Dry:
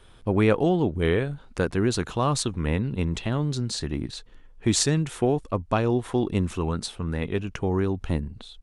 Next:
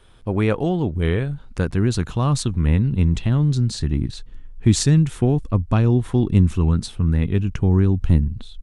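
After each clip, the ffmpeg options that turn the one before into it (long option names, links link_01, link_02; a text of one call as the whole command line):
ffmpeg -i in.wav -af "asubboost=boost=4.5:cutoff=240" out.wav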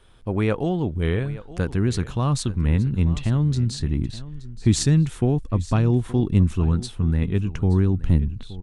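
ffmpeg -i in.wav -af "aecho=1:1:873:0.141,volume=-2.5dB" out.wav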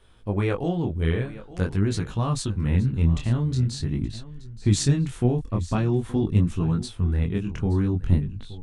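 ffmpeg -i in.wav -af "flanger=delay=18:depth=7.2:speed=0.46,volume=1dB" out.wav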